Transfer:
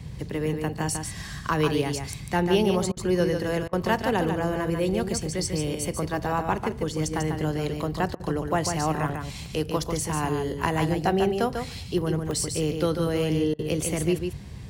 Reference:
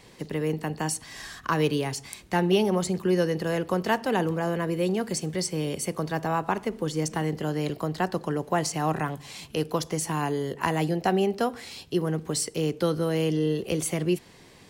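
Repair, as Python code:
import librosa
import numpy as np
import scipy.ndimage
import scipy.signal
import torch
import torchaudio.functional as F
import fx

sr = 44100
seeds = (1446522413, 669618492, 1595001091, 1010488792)

y = fx.fix_interpolate(x, sr, at_s=(5.86, 9.46, 11.98, 12.31), length_ms=1.1)
y = fx.fix_interpolate(y, sr, at_s=(2.92, 3.68, 8.15, 13.54), length_ms=48.0)
y = fx.noise_reduce(y, sr, print_start_s=14.18, print_end_s=14.68, reduce_db=8.0)
y = fx.fix_echo_inverse(y, sr, delay_ms=145, level_db=-6.0)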